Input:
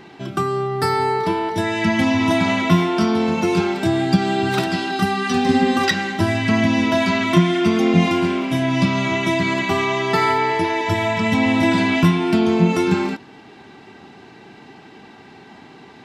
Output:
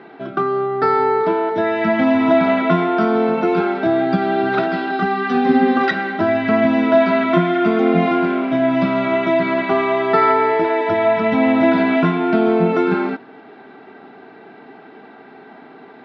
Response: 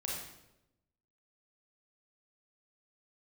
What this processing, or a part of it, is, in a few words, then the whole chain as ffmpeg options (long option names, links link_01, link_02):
kitchen radio: -af "highpass=190,equalizer=frequency=260:width_type=q:width=4:gain=5,equalizer=frequency=440:width_type=q:width=4:gain=7,equalizer=frequency=670:width_type=q:width=4:gain=9,equalizer=frequency=1400:width_type=q:width=4:gain=9,equalizer=frequency=2900:width_type=q:width=4:gain=-6,lowpass=frequency=3500:width=0.5412,lowpass=frequency=3500:width=1.3066,volume=-1.5dB"